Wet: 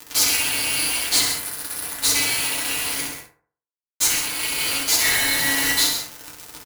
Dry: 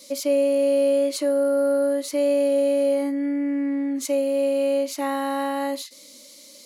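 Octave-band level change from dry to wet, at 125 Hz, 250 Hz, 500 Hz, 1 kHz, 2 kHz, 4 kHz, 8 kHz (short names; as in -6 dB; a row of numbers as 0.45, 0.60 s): n/a, -12.5 dB, -19.5 dB, -1.0 dB, +15.5 dB, +17.0 dB, +17.0 dB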